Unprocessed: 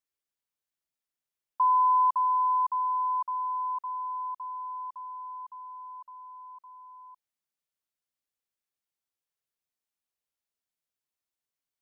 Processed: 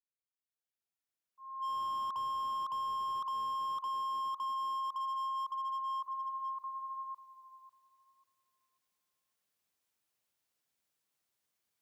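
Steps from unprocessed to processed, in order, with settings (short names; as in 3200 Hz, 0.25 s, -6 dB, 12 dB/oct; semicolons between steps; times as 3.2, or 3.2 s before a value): opening faded in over 3.60 s; auto swell 0.219 s; in parallel at +1 dB: compressor 6:1, threshold -41 dBFS, peak gain reduction 14 dB; on the sum: pre-echo 0.222 s -16 dB; soft clip -23.5 dBFS, distortion -20 dB; frequency shift +57 Hz; tape echo 0.545 s, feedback 33%, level -11 dB, low-pass 1000 Hz; slew limiter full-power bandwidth 19 Hz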